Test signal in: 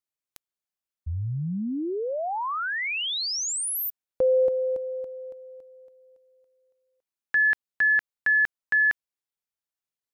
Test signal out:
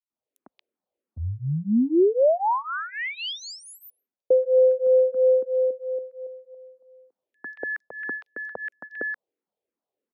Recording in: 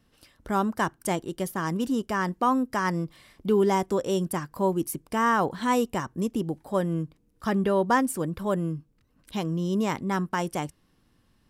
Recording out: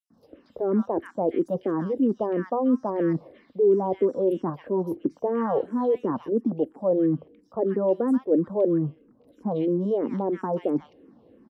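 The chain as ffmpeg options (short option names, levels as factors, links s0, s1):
-filter_complex "[0:a]equalizer=f=125:t=o:w=1:g=-3,equalizer=f=250:t=o:w=1:g=7,equalizer=f=500:t=o:w=1:g=10,equalizer=f=8000:t=o:w=1:g=-10,areverse,acompressor=threshold=0.0501:ratio=10:attack=0.65:release=582:knee=1:detection=peak,areverse,acrossover=split=1500|5300[s0][s1][s2];[s0]adelay=100[s3];[s1]adelay=230[s4];[s3][s4][s2]amix=inputs=3:normalize=0,acrossover=split=220|890[s5][s6][s7];[s6]dynaudnorm=f=240:g=3:m=2.99[s8];[s5][s8][s7]amix=inputs=3:normalize=0,highpass=71,aemphasis=mode=reproduction:type=50fm,asplit=2[s9][s10];[s10]afreqshift=-3[s11];[s9][s11]amix=inputs=2:normalize=1,volume=1.5"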